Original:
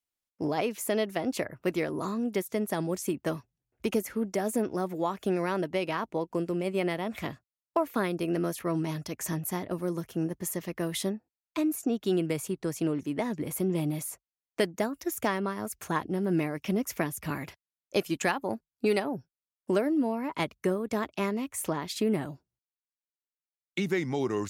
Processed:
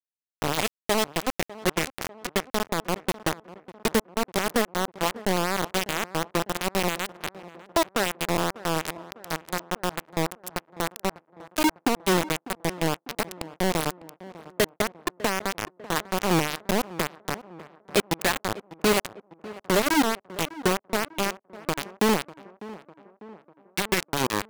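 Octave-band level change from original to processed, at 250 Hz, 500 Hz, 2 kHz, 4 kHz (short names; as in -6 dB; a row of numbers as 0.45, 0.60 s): 0.0, +2.0, +8.0, +11.0 dB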